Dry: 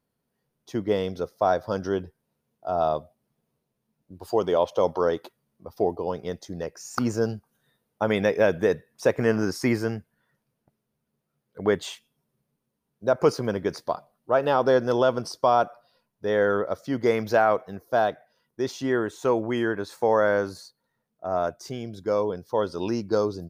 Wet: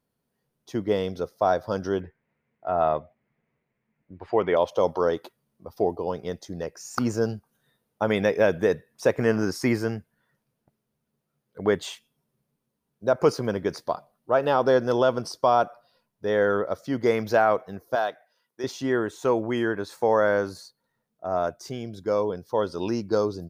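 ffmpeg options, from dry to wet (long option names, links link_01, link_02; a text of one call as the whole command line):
ffmpeg -i in.wav -filter_complex "[0:a]asplit=3[link_01][link_02][link_03];[link_01]afade=type=out:start_time=2:duration=0.02[link_04];[link_02]lowpass=frequency=2100:width_type=q:width=5,afade=type=in:start_time=2:duration=0.02,afade=type=out:start_time=4.55:duration=0.02[link_05];[link_03]afade=type=in:start_time=4.55:duration=0.02[link_06];[link_04][link_05][link_06]amix=inputs=3:normalize=0,asettb=1/sr,asplit=3[link_07][link_08][link_09];[link_07]atrim=end=17.954[link_10];[link_08]atrim=start=17.95:end=18.64,asetpts=PTS-STARTPTS,afade=type=in:duration=0.004:curve=qsin,afade=type=out:start_time=0.686:duration=0.004:curve=qsin,highpass=frequency=780:poles=1[link_11];[link_09]atrim=start=18.636[link_12];[link_10][link_11]acrossfade=duration=0.004:curve1=hsin:curve2=qsin[link_13];[link_13][link_12]acrossfade=duration=0.004:curve1=qsin:curve2=hsin" out.wav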